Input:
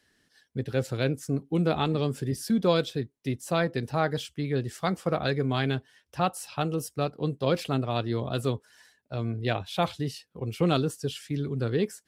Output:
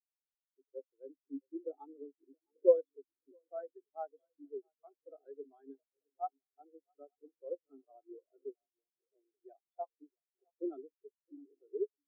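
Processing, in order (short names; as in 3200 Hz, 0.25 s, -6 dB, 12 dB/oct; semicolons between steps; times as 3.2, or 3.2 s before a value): rippled Chebyshev high-pass 270 Hz, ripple 3 dB; swung echo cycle 0.886 s, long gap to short 3:1, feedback 49%, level -10.5 dB; spectral expander 4:1; gain +1 dB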